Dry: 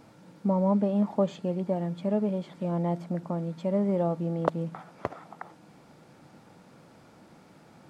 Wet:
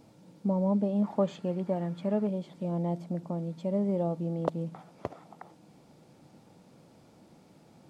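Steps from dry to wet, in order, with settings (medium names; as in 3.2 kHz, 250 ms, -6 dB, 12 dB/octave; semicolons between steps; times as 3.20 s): peaking EQ 1.5 kHz -9.5 dB 1.3 oct, from 1.04 s +2 dB, from 2.27 s -8.5 dB; trim -2 dB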